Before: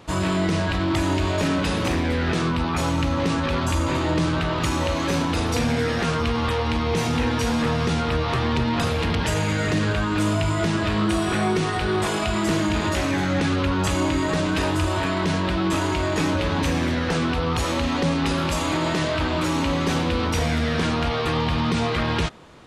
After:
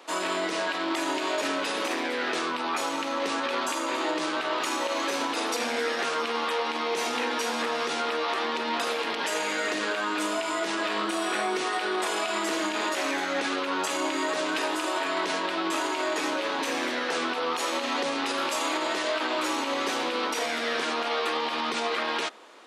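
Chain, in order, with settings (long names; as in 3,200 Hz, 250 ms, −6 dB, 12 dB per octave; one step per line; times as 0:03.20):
Bessel high-pass filter 460 Hz, order 8
brickwall limiter −18.5 dBFS, peak gain reduction 6.5 dB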